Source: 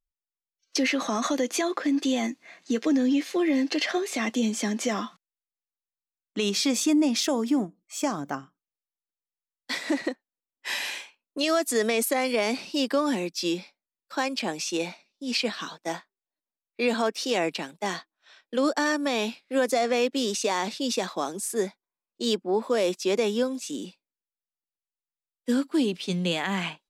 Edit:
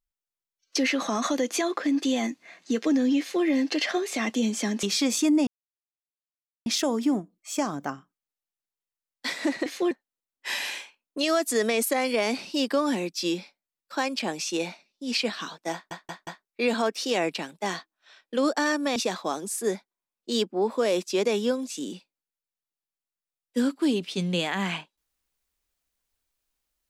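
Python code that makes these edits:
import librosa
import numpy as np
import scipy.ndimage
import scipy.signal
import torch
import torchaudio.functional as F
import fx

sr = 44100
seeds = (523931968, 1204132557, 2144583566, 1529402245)

y = fx.edit(x, sr, fx.duplicate(start_s=3.2, length_s=0.25, to_s=10.11),
    fx.cut(start_s=4.83, length_s=1.64),
    fx.insert_silence(at_s=7.11, length_s=1.19),
    fx.stutter_over(start_s=15.93, slice_s=0.18, count=4),
    fx.cut(start_s=19.16, length_s=1.72), tone=tone)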